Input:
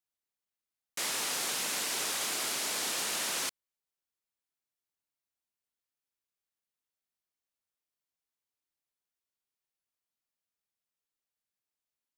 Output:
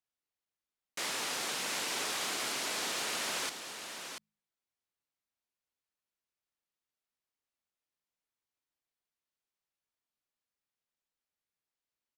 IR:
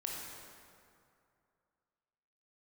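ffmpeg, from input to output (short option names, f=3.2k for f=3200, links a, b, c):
-filter_complex "[0:a]highshelf=f=7.5k:g=-10,bandreject=f=52.86:t=h:w=4,bandreject=f=105.72:t=h:w=4,bandreject=f=158.58:t=h:w=4,bandreject=f=211.44:t=h:w=4,asplit=2[a][b];[b]aecho=0:1:687:0.398[c];[a][c]amix=inputs=2:normalize=0"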